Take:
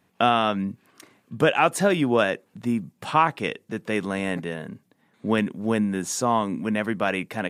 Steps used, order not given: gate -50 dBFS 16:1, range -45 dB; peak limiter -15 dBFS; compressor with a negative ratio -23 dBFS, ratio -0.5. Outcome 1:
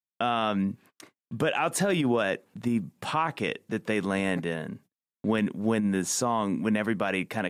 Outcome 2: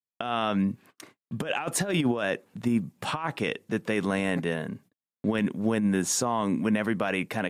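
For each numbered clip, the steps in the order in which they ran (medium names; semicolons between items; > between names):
gate > peak limiter > compressor with a negative ratio; compressor with a negative ratio > gate > peak limiter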